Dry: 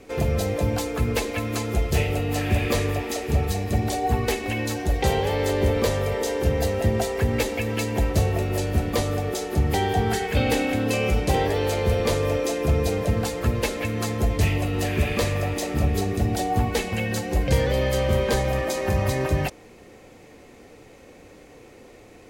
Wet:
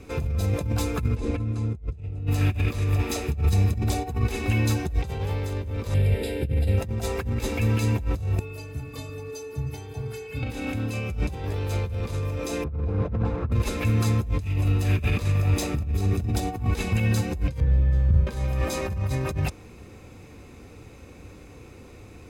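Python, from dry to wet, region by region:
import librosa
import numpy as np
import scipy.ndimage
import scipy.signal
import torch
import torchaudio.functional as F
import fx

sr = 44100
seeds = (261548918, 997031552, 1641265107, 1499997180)

y = fx.chain(x, sr, fx.lowpass(hz=10000.0, slope=24),
    fx.tilt_shelf(db=7.0, hz=720.0), at=(1.15, 2.27))
y = fx.chain(y, sr, fx.cvsd(bps=64000),
    fx.fixed_phaser(hz=2700.0, stages=4), at=(5.94, 6.78))
y = fx.chain(y, sr, fx.stiff_resonator(f0_hz=130.0, decay_s=0.44, stiffness=0.03),
    fx.echo_single(ms=312, db=-22.0), at=(8.39, 10.43))
y = fx.chain(y, sr, fx.delta_mod(bps=64000, step_db=-24.5),
    fx.lowpass(hz=1200.0, slope=12), at=(12.64, 13.52))
y = fx.chain(y, sr, fx.riaa(side='playback'),
    fx.comb_fb(f0_hz=160.0, decay_s=0.94, harmonics='all', damping=0.0, mix_pct=90), at=(17.6, 18.27))
y = fx.over_compress(y, sr, threshold_db=-26.0, ratio=-0.5)
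y = fx.peak_eq(y, sr, hz=77.0, db=10.5, octaves=1.6)
y = y + 0.37 * np.pad(y, (int(0.8 * sr / 1000.0), 0))[:len(y)]
y = F.gain(torch.from_numpy(y), -4.5).numpy()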